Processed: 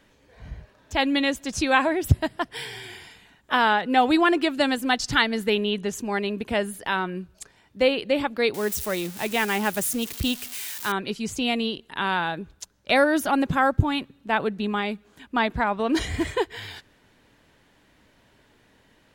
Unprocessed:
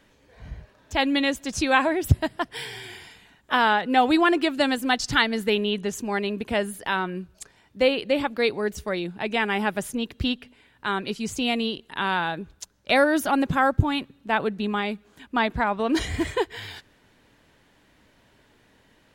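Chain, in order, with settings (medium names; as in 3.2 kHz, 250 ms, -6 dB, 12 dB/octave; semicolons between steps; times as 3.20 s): 8.54–10.92 s: zero-crossing glitches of -23.5 dBFS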